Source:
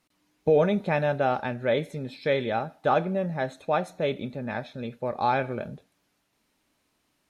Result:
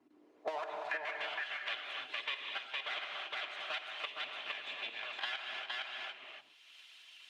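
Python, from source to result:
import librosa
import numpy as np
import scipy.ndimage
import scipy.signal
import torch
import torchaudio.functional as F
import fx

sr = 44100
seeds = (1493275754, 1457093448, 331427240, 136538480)

p1 = fx.lower_of_two(x, sr, delay_ms=2.9)
p2 = scipy.signal.sosfilt(scipy.signal.butter(2, 58.0, 'highpass', fs=sr, output='sos'), p1)
p3 = fx.low_shelf(p2, sr, hz=420.0, db=-8.5)
p4 = fx.level_steps(p3, sr, step_db=14)
p5 = fx.filter_sweep_bandpass(p4, sr, from_hz=280.0, to_hz=3000.0, start_s=0.11, end_s=1.23, q=4.0)
p6 = p5 + fx.echo_single(p5, sr, ms=462, db=-4.5, dry=0)
p7 = fx.rev_gated(p6, sr, seeds[0], gate_ms=320, shape='flat', drr_db=1.5)
p8 = fx.hpss(p7, sr, part='percussive', gain_db=9)
p9 = fx.band_squash(p8, sr, depth_pct=100)
y = p9 * 10.0 ** (-2.5 / 20.0)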